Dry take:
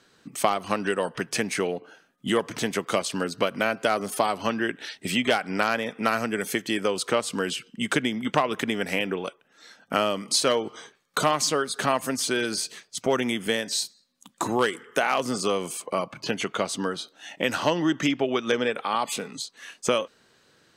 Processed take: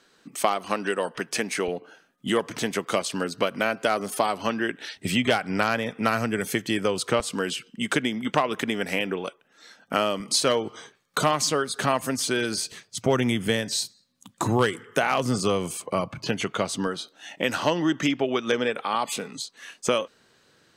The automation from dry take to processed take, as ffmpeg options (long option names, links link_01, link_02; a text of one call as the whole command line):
ffmpeg -i in.wav -af "asetnsamples=nb_out_samples=441:pad=0,asendcmd='1.68 equalizer g -1;4.97 equalizer g 9.5;7.2 equalizer g -0.5;10.2 equalizer g 6;12.72 equalizer g 15;16.18 equalizer g 8.5;16.87 equalizer g 1',equalizer=frequency=100:width_type=o:width=1.3:gain=-10" out.wav